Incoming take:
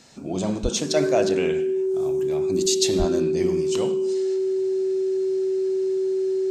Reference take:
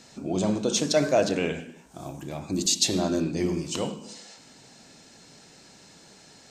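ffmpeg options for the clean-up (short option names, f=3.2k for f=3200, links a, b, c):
-filter_complex "[0:a]bandreject=f=380:w=30,asplit=3[a][b][c];[a]afade=t=out:st=0.62:d=0.02[d];[b]highpass=f=140:w=0.5412,highpass=f=140:w=1.3066,afade=t=in:st=0.62:d=0.02,afade=t=out:st=0.74:d=0.02[e];[c]afade=t=in:st=0.74:d=0.02[f];[d][e][f]amix=inputs=3:normalize=0,asplit=3[g][h][i];[g]afade=t=out:st=2.98:d=0.02[j];[h]highpass=f=140:w=0.5412,highpass=f=140:w=1.3066,afade=t=in:st=2.98:d=0.02,afade=t=out:st=3.1:d=0.02[k];[i]afade=t=in:st=3.1:d=0.02[l];[j][k][l]amix=inputs=3:normalize=0"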